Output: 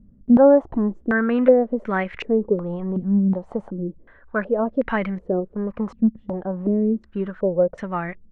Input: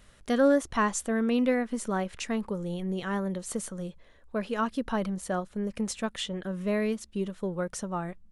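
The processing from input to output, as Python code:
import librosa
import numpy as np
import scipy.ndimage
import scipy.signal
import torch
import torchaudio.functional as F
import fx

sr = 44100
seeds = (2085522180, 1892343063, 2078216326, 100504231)

y = fx.filter_held_lowpass(x, sr, hz=2.7, low_hz=230.0, high_hz=2100.0)
y = F.gain(torch.from_numpy(y), 5.0).numpy()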